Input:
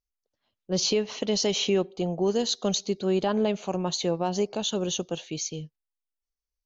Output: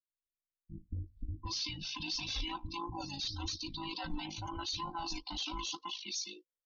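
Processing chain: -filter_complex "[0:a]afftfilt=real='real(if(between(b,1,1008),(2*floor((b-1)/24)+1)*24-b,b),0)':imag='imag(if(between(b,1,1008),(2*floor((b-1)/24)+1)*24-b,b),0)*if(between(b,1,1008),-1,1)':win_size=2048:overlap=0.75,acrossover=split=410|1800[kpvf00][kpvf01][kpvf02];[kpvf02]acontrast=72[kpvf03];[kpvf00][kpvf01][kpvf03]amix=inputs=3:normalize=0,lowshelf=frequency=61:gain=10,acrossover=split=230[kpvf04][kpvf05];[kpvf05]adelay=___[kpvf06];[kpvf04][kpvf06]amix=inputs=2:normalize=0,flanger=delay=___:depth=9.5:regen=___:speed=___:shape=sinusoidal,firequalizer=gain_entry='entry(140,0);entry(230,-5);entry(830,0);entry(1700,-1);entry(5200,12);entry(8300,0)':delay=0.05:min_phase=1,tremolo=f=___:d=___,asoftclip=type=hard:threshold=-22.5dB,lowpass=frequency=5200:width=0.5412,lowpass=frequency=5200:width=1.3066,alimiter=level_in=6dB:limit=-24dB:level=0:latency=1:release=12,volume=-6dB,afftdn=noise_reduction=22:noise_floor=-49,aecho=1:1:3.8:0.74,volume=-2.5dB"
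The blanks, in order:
740, 4.9, -75, 1.7, 53, 0.667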